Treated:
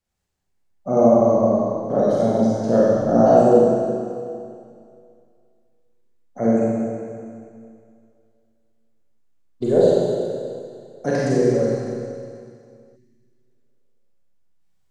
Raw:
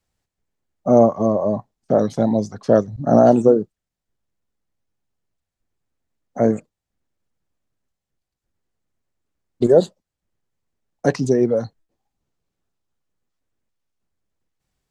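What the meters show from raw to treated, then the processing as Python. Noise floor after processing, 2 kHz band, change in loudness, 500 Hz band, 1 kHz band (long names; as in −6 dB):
−62 dBFS, +0.5 dB, −1.0 dB, +1.0 dB, +1.0 dB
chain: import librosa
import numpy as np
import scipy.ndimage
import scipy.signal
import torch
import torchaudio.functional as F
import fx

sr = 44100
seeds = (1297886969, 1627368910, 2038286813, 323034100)

y = fx.rev_schroeder(x, sr, rt60_s=2.3, comb_ms=31, drr_db=-7.5)
y = fx.spec_repair(y, sr, seeds[0], start_s=12.99, length_s=0.71, low_hz=390.0, high_hz=1700.0, source='after')
y = y * 10.0 ** (-7.5 / 20.0)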